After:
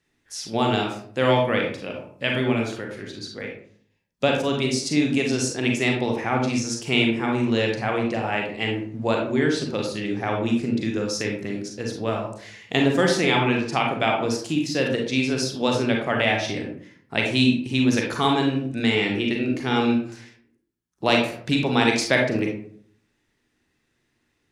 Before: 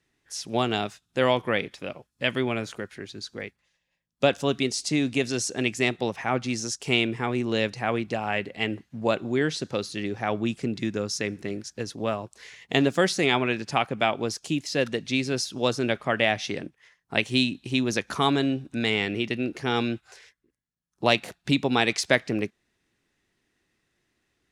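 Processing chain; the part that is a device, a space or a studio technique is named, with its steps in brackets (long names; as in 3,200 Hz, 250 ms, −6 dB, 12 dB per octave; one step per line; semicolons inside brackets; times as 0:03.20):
bathroom (convolution reverb RT60 0.55 s, pre-delay 34 ms, DRR 0.5 dB)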